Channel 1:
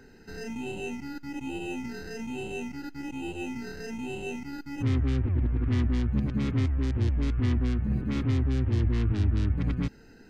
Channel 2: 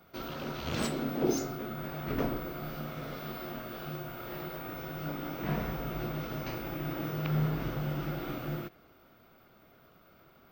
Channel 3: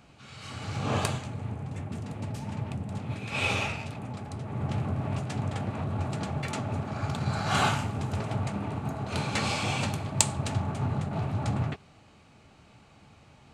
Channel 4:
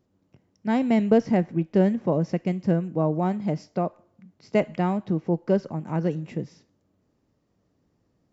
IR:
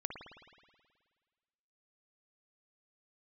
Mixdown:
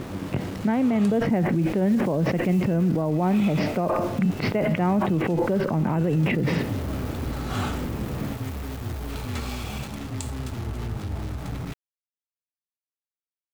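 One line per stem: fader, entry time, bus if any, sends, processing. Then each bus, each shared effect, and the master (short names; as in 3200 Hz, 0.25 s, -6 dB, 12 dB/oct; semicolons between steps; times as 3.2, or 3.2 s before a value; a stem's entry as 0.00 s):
-6.5 dB, 1.85 s, no send, dry
-11.0 dB, 1.20 s, no send, wrapped overs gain 33 dB
-8.0 dB, 0.00 s, no send, small resonant body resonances 430/1300/3400 Hz, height 8 dB
-3.0 dB, 0.00 s, no send, LPF 2900 Hz 24 dB/oct; fast leveller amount 100%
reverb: off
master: sample gate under -35.5 dBFS; limiter -15 dBFS, peak gain reduction 10.5 dB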